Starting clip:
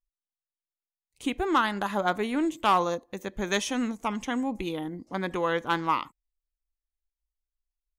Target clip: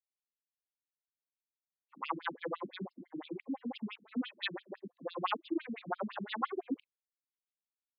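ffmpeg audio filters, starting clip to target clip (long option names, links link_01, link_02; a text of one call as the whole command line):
ffmpeg -i in.wav -af "areverse,afftfilt=real='re*between(b*sr/1024,210*pow(3700/210,0.5+0.5*sin(2*PI*5.9*pts/sr))/1.41,210*pow(3700/210,0.5+0.5*sin(2*PI*5.9*pts/sr))*1.41)':imag='im*between(b*sr/1024,210*pow(3700/210,0.5+0.5*sin(2*PI*5.9*pts/sr))/1.41,210*pow(3700/210,0.5+0.5*sin(2*PI*5.9*pts/sr))*1.41)':win_size=1024:overlap=0.75,volume=-3.5dB" out.wav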